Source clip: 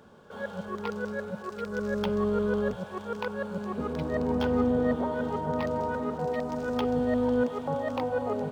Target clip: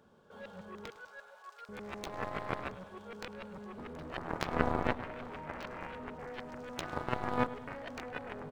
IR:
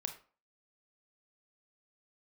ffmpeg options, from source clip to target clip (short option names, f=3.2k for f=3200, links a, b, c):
-filter_complex "[0:a]asettb=1/sr,asplit=3[a][b][c];[a]atrim=end=0.904[d];[b]atrim=start=0.9:end=1.69,asetpts=PTS-STARTPTS,afade=t=in:d=0.004:c=qsin,afade=t=out:st=0.786:d=0.004:c=qsin,highpass=f=710:w=0.5412,highpass=f=710:w=1.3066[e];[c]atrim=start=1.686[f];[d][e]acrossfade=d=0.004:c1=hsin:c2=qsin[g];[g][f]acrossfade=d=0.004:c1=qsin:c2=hsin,aeval=exprs='0.2*(cos(1*acos(clip(val(0)/0.2,-1,1)))-cos(1*PI/2))+0.0794*(cos(3*acos(clip(val(0)/0.2,-1,1)))-cos(3*PI/2))+0.00126*(cos(4*acos(clip(val(0)/0.2,-1,1)))-cos(4*PI/2))':c=same,asplit=2[h][i];[i]adelay=104,lowpass=f=3.5k:p=1,volume=-16dB,asplit=2[j][k];[k]adelay=104,lowpass=f=3.5k:p=1,volume=0.53,asplit=2[l][m];[m]adelay=104,lowpass=f=3.5k:p=1,volume=0.53,asplit=2[n][o];[o]adelay=104,lowpass=f=3.5k:p=1,volume=0.53,asplit=2[p][q];[q]adelay=104,lowpass=f=3.5k:p=1,volume=0.53[r];[h][j][l][n][p][r]amix=inputs=6:normalize=0,volume=4.5dB"